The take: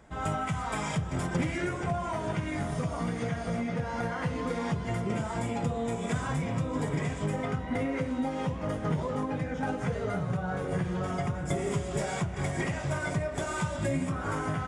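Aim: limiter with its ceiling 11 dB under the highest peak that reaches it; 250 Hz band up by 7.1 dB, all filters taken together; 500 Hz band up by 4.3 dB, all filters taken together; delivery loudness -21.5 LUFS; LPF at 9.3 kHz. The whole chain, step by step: low-pass 9.3 kHz; peaking EQ 250 Hz +8.5 dB; peaking EQ 500 Hz +3 dB; trim +10 dB; peak limiter -13 dBFS

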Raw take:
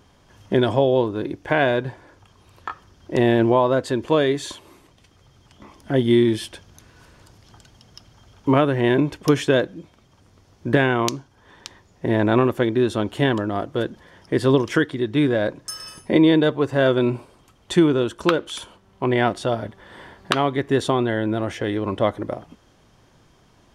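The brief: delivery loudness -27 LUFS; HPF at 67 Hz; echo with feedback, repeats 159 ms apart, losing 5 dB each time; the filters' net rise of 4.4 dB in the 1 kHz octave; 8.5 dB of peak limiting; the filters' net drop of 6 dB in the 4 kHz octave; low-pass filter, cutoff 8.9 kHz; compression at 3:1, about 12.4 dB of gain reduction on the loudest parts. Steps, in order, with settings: high-pass 67 Hz; low-pass 8.9 kHz; peaking EQ 1 kHz +6 dB; peaking EQ 4 kHz -8 dB; compression 3:1, threshold -28 dBFS; peak limiter -19.5 dBFS; feedback delay 159 ms, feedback 56%, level -5 dB; trim +4 dB

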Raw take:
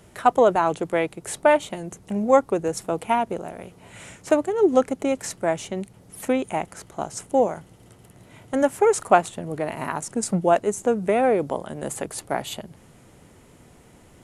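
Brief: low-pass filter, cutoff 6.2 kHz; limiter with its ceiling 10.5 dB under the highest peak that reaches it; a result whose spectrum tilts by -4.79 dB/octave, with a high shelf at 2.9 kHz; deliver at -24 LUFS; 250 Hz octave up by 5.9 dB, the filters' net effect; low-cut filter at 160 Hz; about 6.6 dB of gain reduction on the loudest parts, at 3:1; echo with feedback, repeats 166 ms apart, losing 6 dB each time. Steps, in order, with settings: high-pass 160 Hz; low-pass 6.2 kHz; peaking EQ 250 Hz +8 dB; treble shelf 2.9 kHz +5 dB; compression 3:1, threshold -18 dBFS; peak limiter -17.5 dBFS; feedback delay 166 ms, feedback 50%, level -6 dB; trim +3.5 dB

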